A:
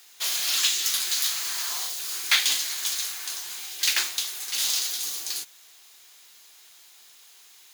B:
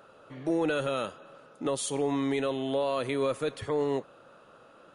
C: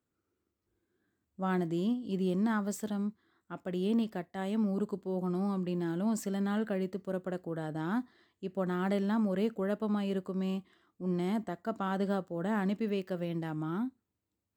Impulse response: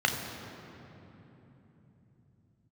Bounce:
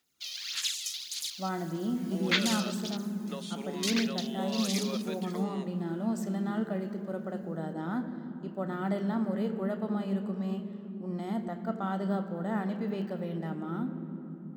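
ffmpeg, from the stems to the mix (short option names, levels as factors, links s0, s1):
-filter_complex "[0:a]afwtdn=0.0282,aphaser=in_gain=1:out_gain=1:delay=1.6:decay=0.62:speed=1.7:type=sinusoidal,volume=0.299[s0];[1:a]highpass=670,acrossover=split=4400[s1][s2];[s2]acompressor=threshold=0.00112:ratio=4:attack=1:release=60[s3];[s1][s3]amix=inputs=2:normalize=0,equalizer=f=960:w=0.5:g=-10.5,adelay=1650,volume=1.12[s4];[2:a]volume=0.668,asplit=2[s5][s6];[s6]volume=0.2[s7];[3:a]atrim=start_sample=2205[s8];[s7][s8]afir=irnorm=-1:irlink=0[s9];[s0][s4][s5][s9]amix=inputs=4:normalize=0"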